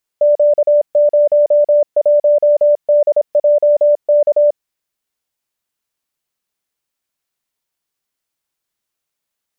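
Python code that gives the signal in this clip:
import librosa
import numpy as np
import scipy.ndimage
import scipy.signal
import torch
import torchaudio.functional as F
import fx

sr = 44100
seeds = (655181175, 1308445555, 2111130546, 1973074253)

y = fx.morse(sr, text='Q01DJK', wpm=26, hz=589.0, level_db=-7.0)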